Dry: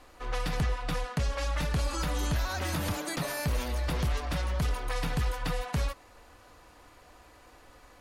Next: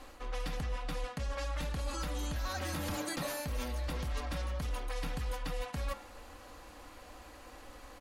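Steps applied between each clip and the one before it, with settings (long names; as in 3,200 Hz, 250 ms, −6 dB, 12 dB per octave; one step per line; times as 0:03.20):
comb filter 3.7 ms, depth 39%
hum removal 106.7 Hz, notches 35
reversed playback
downward compressor 6 to 1, threshold −37 dBFS, peak gain reduction 12 dB
reversed playback
level +3 dB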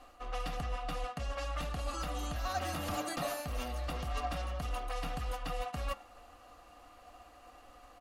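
hollow resonant body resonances 710/1,200/2,800 Hz, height 15 dB, ringing for 55 ms
expander for the loud parts 1.5 to 1, over −48 dBFS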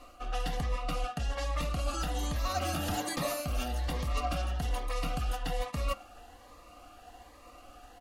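phaser whose notches keep moving one way rising 1.2 Hz
level +5.5 dB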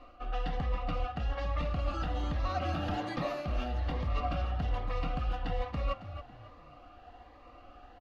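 high-frequency loss of the air 270 metres
on a send: echo with shifted repeats 275 ms, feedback 32%, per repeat +31 Hz, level −12 dB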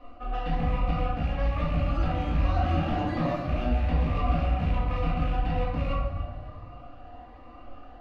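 loose part that buzzes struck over −30 dBFS, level −31 dBFS
high-shelf EQ 2,600 Hz −9 dB
rectangular room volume 270 cubic metres, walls mixed, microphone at 1.9 metres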